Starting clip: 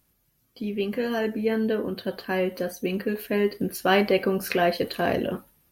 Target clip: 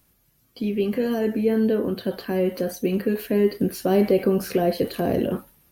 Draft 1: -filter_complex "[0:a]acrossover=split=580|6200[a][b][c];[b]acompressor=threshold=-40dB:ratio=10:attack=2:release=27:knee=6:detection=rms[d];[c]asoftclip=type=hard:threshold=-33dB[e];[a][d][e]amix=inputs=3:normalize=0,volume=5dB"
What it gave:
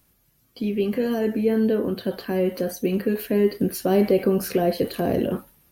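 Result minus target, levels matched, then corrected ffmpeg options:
hard clip: distortion -8 dB
-filter_complex "[0:a]acrossover=split=580|6200[a][b][c];[b]acompressor=threshold=-40dB:ratio=10:attack=2:release=27:knee=6:detection=rms[d];[c]asoftclip=type=hard:threshold=-41dB[e];[a][d][e]amix=inputs=3:normalize=0,volume=5dB"

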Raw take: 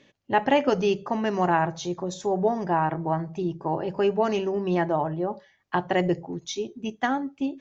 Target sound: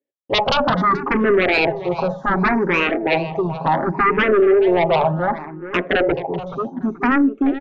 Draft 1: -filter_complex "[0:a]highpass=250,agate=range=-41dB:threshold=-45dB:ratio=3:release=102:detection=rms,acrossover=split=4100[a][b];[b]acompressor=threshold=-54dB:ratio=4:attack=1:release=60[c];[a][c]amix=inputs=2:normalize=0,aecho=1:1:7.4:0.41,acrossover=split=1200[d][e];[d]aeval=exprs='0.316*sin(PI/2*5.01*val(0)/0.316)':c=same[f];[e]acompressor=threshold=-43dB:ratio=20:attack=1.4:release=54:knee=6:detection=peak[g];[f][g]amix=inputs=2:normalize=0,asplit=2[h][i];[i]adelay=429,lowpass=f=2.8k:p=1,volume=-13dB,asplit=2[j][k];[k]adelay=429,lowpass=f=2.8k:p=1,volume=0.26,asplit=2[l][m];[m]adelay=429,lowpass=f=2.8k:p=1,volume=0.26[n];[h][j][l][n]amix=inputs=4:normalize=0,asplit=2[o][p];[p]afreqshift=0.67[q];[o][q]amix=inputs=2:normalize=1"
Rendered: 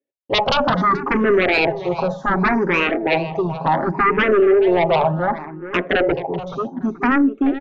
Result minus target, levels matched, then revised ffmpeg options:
compressor: peak gain reduction -11 dB
-filter_complex "[0:a]highpass=250,agate=range=-41dB:threshold=-45dB:ratio=3:release=102:detection=rms,acrossover=split=4100[a][b];[b]acompressor=threshold=-54dB:ratio=4:attack=1:release=60[c];[a][c]amix=inputs=2:normalize=0,aecho=1:1:7.4:0.41,acrossover=split=1200[d][e];[d]aeval=exprs='0.316*sin(PI/2*5.01*val(0)/0.316)':c=same[f];[e]acompressor=threshold=-54.5dB:ratio=20:attack=1.4:release=54:knee=6:detection=peak[g];[f][g]amix=inputs=2:normalize=0,asplit=2[h][i];[i]adelay=429,lowpass=f=2.8k:p=1,volume=-13dB,asplit=2[j][k];[k]adelay=429,lowpass=f=2.8k:p=1,volume=0.26,asplit=2[l][m];[m]adelay=429,lowpass=f=2.8k:p=1,volume=0.26[n];[h][j][l][n]amix=inputs=4:normalize=0,asplit=2[o][p];[p]afreqshift=0.67[q];[o][q]amix=inputs=2:normalize=1"

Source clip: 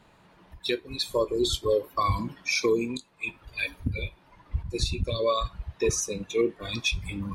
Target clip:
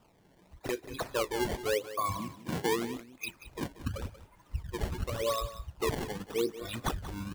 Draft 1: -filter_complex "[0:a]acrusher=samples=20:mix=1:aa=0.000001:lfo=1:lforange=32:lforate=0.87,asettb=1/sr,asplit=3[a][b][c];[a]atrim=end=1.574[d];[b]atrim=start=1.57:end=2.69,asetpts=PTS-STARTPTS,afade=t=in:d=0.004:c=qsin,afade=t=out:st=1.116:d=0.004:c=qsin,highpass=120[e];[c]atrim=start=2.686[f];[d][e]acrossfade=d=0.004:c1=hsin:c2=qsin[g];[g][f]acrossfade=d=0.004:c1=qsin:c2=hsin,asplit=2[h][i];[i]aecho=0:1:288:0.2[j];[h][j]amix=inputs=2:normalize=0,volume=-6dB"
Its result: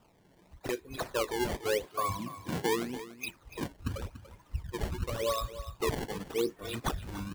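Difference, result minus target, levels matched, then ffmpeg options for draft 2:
echo 0.104 s late
-filter_complex "[0:a]acrusher=samples=20:mix=1:aa=0.000001:lfo=1:lforange=32:lforate=0.87,asettb=1/sr,asplit=3[a][b][c];[a]atrim=end=1.574[d];[b]atrim=start=1.57:end=2.69,asetpts=PTS-STARTPTS,afade=t=in:d=0.004:c=qsin,afade=t=out:st=1.116:d=0.004:c=qsin,highpass=120[e];[c]atrim=start=2.686[f];[d][e]acrossfade=d=0.004:c1=hsin:c2=qsin[g];[g][f]acrossfade=d=0.004:c1=qsin:c2=hsin,asplit=2[h][i];[i]aecho=0:1:184:0.2[j];[h][j]amix=inputs=2:normalize=0,volume=-6dB"

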